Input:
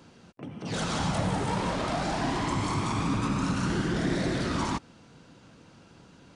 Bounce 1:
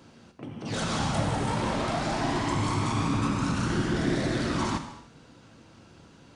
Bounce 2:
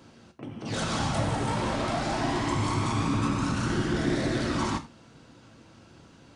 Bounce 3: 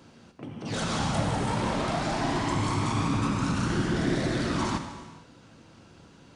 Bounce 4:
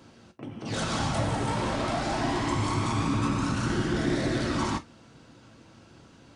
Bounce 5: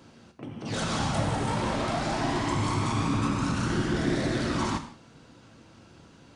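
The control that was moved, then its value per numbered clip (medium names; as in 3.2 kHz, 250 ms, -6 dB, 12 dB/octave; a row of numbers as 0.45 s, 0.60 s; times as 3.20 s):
gated-style reverb, gate: 320 ms, 120 ms, 500 ms, 80 ms, 210 ms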